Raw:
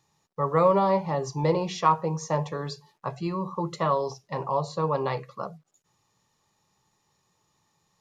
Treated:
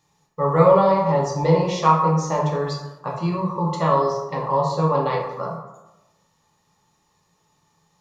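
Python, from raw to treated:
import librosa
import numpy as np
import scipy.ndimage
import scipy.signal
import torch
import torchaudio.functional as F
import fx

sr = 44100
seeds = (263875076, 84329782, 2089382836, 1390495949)

y = fx.rev_plate(x, sr, seeds[0], rt60_s=1.0, hf_ratio=0.5, predelay_ms=0, drr_db=-2.0)
y = y * 10.0 ** (1.5 / 20.0)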